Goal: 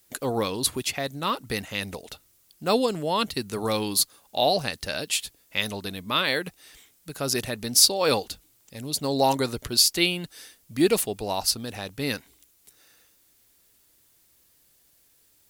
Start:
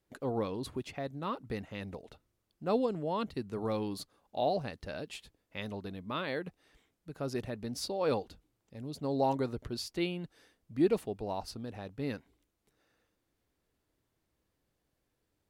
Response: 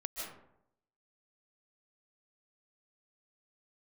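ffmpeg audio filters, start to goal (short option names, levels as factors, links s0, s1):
-af "crystalizer=i=8.5:c=0,volume=1.88"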